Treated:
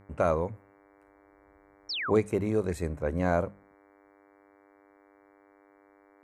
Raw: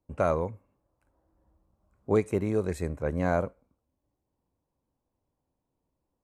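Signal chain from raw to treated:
hum with harmonics 100 Hz, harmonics 23, −54 dBFS −6 dB per octave
sound drawn into the spectrogram fall, 0:01.89–0:02.11, 920–5,800 Hz −33 dBFS
mains-hum notches 50/100/150/200 Hz

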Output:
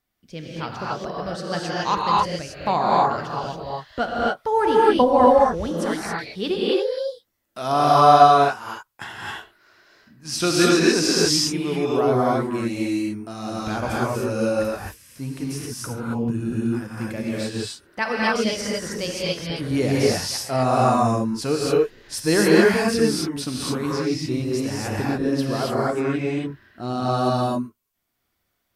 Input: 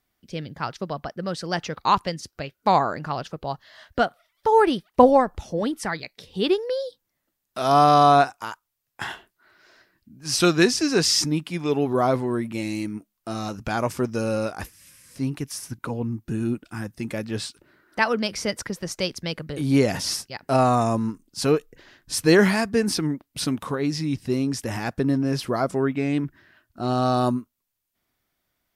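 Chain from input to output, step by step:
reverb whose tail is shaped and stops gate 300 ms rising, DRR −5 dB
level −4 dB

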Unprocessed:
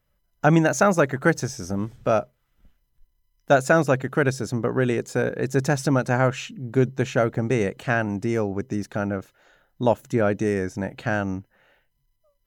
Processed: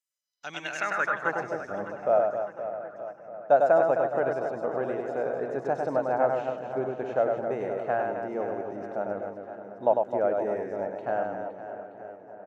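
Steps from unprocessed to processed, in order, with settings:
reverse bouncing-ball delay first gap 100 ms, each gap 1.6×, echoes 5
band-pass filter sweep 7,700 Hz → 690 Hz, 0:00.08–0:01.53
feedback echo with a low-pass in the loop 605 ms, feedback 58%, low-pass 2,700 Hz, level −14 dB

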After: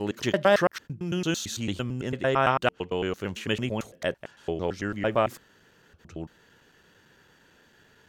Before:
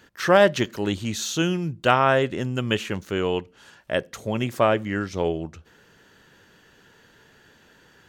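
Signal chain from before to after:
slices reordered back to front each 112 ms, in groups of 8
level −4 dB

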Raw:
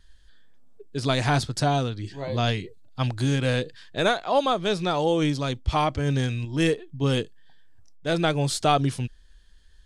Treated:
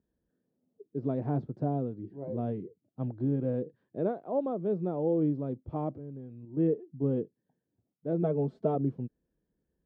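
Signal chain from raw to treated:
0:05.90–0:06.57: downward compressor 8 to 1, threshold −34 dBFS, peak gain reduction 13.5 dB
0:08.22–0:08.75: comb filter 4.6 ms, depth 88%
flat-topped band-pass 280 Hz, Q 0.77
level −3 dB

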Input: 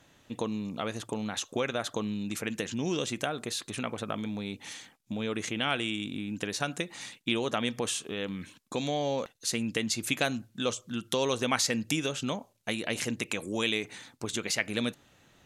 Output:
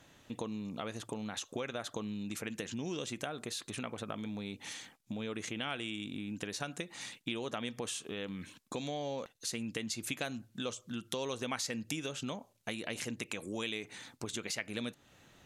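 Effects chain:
downward compressor 2 to 1, threshold −41 dBFS, peak gain reduction 10.5 dB

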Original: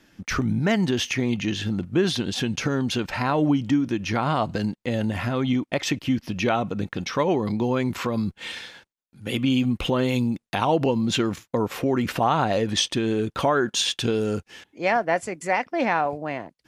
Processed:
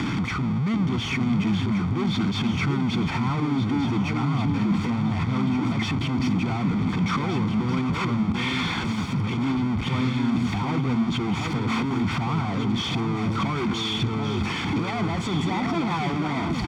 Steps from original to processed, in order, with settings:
sign of each sample alone
high-pass filter 130 Hz 12 dB per octave
bass and treble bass +11 dB, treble −6 dB
comb filter 0.9 ms, depth 72%
brickwall limiter −19 dBFS, peak gain reduction 9.5 dB
high-frequency loss of the air 130 metres
delay that swaps between a low-pass and a high-pass 735 ms, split 910 Hz, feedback 55%, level −4 dB

